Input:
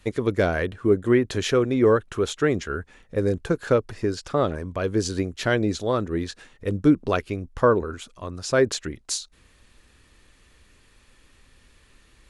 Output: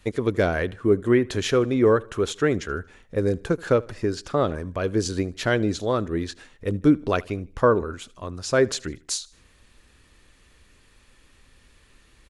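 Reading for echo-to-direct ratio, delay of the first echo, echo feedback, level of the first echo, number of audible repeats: -22.5 dB, 77 ms, 42%, -23.5 dB, 2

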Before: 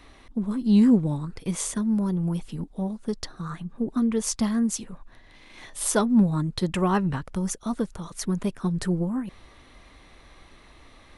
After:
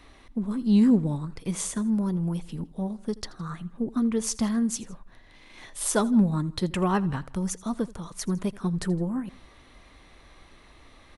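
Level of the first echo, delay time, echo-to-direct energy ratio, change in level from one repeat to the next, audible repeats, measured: -21.0 dB, 81 ms, -20.0 dB, -5.0 dB, 2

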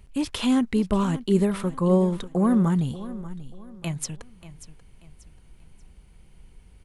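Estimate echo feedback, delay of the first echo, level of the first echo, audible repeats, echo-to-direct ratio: 33%, 586 ms, -15.5 dB, 3, -15.0 dB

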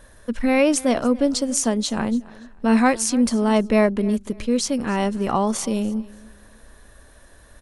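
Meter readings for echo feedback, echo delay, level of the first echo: 25%, 287 ms, -21.0 dB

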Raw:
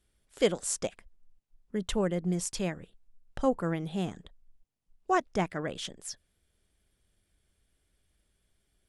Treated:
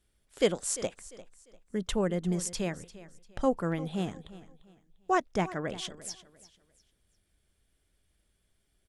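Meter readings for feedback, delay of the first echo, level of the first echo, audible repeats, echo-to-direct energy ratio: 30%, 347 ms, -17.0 dB, 2, -16.5 dB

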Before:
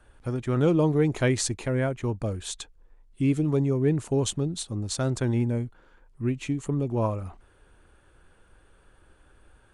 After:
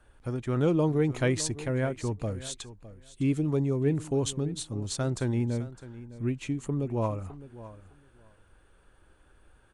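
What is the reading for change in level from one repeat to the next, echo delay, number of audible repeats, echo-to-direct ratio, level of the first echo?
-16.0 dB, 609 ms, 2, -16.0 dB, -16.0 dB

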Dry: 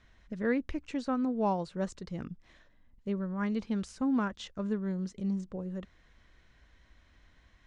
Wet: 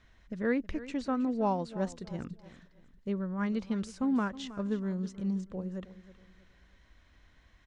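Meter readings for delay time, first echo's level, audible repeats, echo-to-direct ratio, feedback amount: 319 ms, -16.0 dB, 3, -15.5 dB, 34%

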